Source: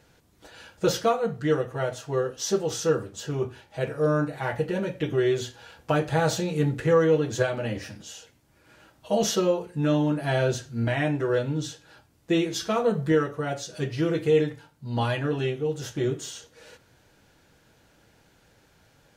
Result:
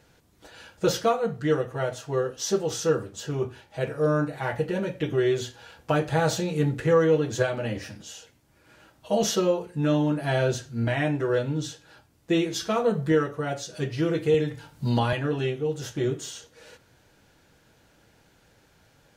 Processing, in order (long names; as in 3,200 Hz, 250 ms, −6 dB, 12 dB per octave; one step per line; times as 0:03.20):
0:14.34–0:15.13: multiband upward and downward compressor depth 100%